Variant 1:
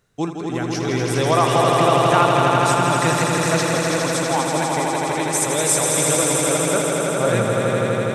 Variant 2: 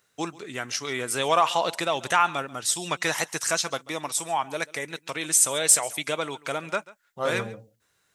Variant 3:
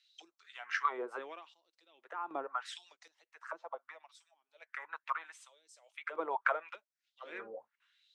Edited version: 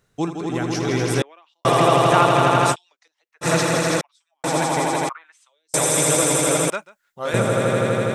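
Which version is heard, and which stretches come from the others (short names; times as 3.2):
1
1.22–1.65 from 3
2.73–3.44 from 3, crossfade 0.06 s
4.01–4.44 from 3
5.09–5.74 from 3
6.7–7.34 from 2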